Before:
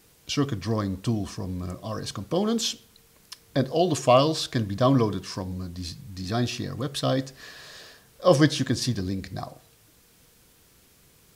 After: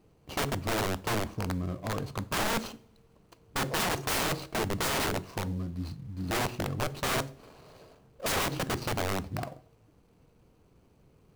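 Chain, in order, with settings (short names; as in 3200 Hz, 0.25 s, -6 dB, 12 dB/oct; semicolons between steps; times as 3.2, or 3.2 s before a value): median filter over 25 samples; wrapped overs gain 24 dB; two-slope reverb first 0.4 s, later 1.9 s, from -26 dB, DRR 15.5 dB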